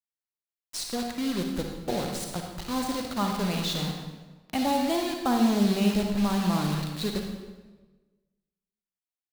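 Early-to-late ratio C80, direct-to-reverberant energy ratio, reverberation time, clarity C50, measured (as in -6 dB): 5.0 dB, 2.0 dB, 1.3 s, 2.5 dB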